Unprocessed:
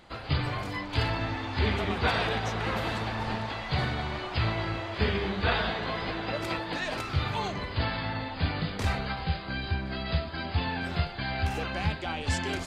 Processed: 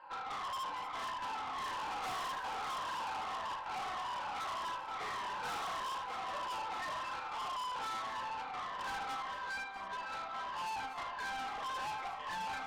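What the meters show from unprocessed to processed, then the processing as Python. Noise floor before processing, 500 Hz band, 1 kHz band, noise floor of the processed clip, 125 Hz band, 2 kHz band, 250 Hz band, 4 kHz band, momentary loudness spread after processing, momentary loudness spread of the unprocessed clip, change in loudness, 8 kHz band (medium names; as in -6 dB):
-38 dBFS, -15.5 dB, -2.5 dB, -44 dBFS, -31.5 dB, -10.0 dB, -22.5 dB, -10.5 dB, 2 LU, 5 LU, -9.0 dB, -4.5 dB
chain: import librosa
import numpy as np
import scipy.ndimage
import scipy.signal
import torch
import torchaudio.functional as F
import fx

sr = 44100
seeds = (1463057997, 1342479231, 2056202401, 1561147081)

p1 = fx.spec_ripple(x, sr, per_octave=1.3, drift_hz=-1.7, depth_db=15)
p2 = fx.chopper(p1, sr, hz=0.82, depth_pct=65, duty_pct=90)
p3 = fx.ladder_bandpass(p2, sr, hz=1100.0, resonance_pct=65)
p4 = fx.tilt_shelf(p3, sr, db=3.0, hz=1100.0)
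p5 = p4 + 0.47 * np.pad(p4, (int(3.8 * sr / 1000.0), 0))[:len(p4)]
p6 = p5 + fx.room_early_taps(p5, sr, ms=(35, 76), db=(-7.5, -9.0), dry=0)
p7 = fx.tube_stage(p6, sr, drive_db=46.0, bias=0.2)
p8 = p7 + 10.0 ** (-12.5 / 20.0) * np.pad(p7, (int(237 * sr / 1000.0), 0))[:len(p7)]
y = F.gain(torch.from_numpy(p8), 8.0).numpy()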